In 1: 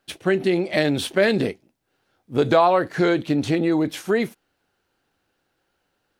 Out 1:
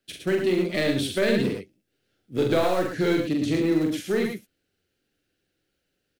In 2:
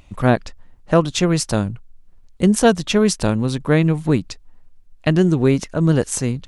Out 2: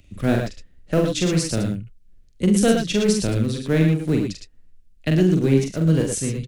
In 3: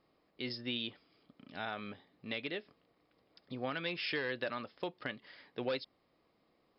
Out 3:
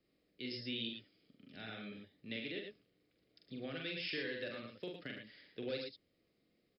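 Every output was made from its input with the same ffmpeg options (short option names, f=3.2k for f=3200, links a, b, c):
-filter_complex "[0:a]equalizer=f=950:t=o:w=0.79:g=-9.5,acrossover=split=180|610|1300[a][b][c][d];[b]crystalizer=i=9.5:c=0[e];[c]acrusher=bits=3:dc=4:mix=0:aa=0.000001[f];[a][e][f][d]amix=inputs=4:normalize=0,aecho=1:1:44|74|109|119:0.668|0.2|0.422|0.355,volume=-4.5dB"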